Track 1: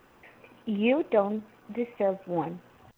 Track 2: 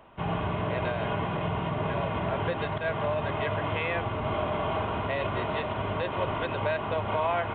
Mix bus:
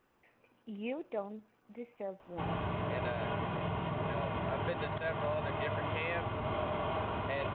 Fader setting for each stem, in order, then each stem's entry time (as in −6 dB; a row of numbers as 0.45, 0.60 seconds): −14.5, −6.0 decibels; 0.00, 2.20 seconds